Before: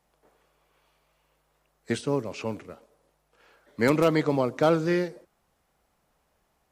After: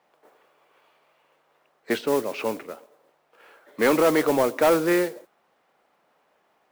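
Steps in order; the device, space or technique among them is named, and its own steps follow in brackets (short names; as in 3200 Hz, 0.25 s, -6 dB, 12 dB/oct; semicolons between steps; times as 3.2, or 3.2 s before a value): carbon microphone (BPF 320–3200 Hz; soft clip -20 dBFS, distortion -12 dB; modulation noise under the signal 17 dB); gain +7.5 dB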